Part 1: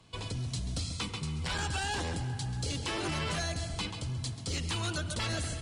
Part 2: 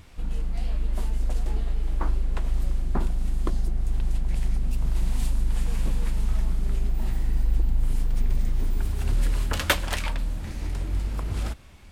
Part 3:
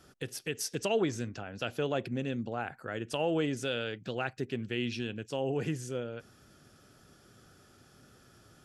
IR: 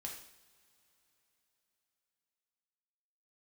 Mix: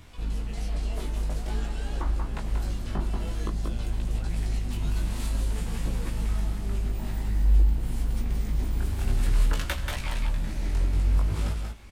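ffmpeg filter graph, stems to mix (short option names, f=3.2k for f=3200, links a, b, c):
-filter_complex "[0:a]volume=-9.5dB[a];[1:a]volume=1.5dB,asplit=3[b][c][d];[c]volume=-8.5dB[e];[d]volume=-4.5dB[f];[2:a]volume=-13dB[g];[3:a]atrim=start_sample=2205[h];[e][h]afir=irnorm=-1:irlink=0[i];[f]aecho=0:1:184:1[j];[a][b][g][i][j]amix=inputs=5:normalize=0,acrossover=split=160[k][l];[l]acompressor=threshold=-31dB:ratio=2.5[m];[k][m]amix=inputs=2:normalize=0,flanger=delay=17:depth=3.8:speed=0.5"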